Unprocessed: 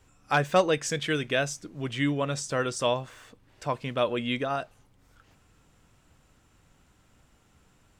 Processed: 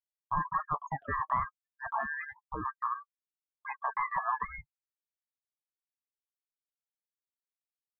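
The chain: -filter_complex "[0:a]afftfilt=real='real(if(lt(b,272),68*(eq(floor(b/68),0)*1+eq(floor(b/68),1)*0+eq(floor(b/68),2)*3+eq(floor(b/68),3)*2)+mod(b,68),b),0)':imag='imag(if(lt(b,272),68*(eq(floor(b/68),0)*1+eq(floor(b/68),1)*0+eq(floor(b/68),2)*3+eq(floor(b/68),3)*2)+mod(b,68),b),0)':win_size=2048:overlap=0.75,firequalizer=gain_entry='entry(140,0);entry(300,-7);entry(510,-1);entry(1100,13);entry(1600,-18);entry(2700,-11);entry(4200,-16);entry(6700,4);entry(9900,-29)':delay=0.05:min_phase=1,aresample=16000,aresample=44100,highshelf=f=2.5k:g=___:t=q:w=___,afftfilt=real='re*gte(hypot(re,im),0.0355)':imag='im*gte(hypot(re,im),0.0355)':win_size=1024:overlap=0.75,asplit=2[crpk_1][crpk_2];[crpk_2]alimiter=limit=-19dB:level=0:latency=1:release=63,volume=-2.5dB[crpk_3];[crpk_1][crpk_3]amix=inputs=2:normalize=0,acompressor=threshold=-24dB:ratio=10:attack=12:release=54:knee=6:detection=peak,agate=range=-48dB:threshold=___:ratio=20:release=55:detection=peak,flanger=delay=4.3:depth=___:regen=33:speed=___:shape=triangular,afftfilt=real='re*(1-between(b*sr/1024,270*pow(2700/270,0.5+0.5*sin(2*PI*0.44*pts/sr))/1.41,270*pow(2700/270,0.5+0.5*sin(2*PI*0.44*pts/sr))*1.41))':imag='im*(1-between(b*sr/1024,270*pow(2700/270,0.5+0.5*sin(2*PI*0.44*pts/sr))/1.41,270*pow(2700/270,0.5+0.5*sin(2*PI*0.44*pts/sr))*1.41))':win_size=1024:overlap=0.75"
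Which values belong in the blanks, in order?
-13.5, 3, -45dB, 3.1, 0.51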